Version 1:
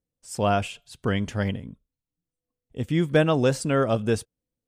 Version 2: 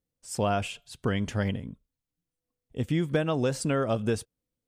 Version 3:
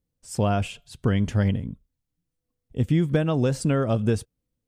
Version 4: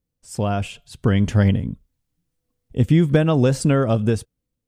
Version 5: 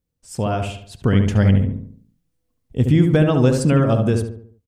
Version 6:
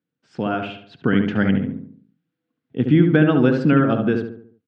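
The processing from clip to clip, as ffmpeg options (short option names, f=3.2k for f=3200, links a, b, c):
-af "acompressor=threshold=-22dB:ratio=6"
-af "lowshelf=f=260:g=9.5"
-af "dynaudnorm=f=220:g=9:m=8dB"
-filter_complex "[0:a]asplit=2[a][b];[b]adelay=72,lowpass=f=1.6k:p=1,volume=-4dB,asplit=2[c][d];[d]adelay=72,lowpass=f=1.6k:p=1,volume=0.47,asplit=2[e][f];[f]adelay=72,lowpass=f=1.6k:p=1,volume=0.47,asplit=2[g][h];[h]adelay=72,lowpass=f=1.6k:p=1,volume=0.47,asplit=2[i][j];[j]adelay=72,lowpass=f=1.6k:p=1,volume=0.47,asplit=2[k][l];[l]adelay=72,lowpass=f=1.6k:p=1,volume=0.47[m];[a][c][e][g][i][k][m]amix=inputs=7:normalize=0"
-af "highpass=f=150:w=0.5412,highpass=f=150:w=1.3066,equalizer=f=300:t=q:w=4:g=5,equalizer=f=580:t=q:w=4:g=-5,equalizer=f=1k:t=q:w=4:g=-4,equalizer=f=1.5k:t=q:w=4:g=8,lowpass=f=3.6k:w=0.5412,lowpass=f=3.6k:w=1.3066"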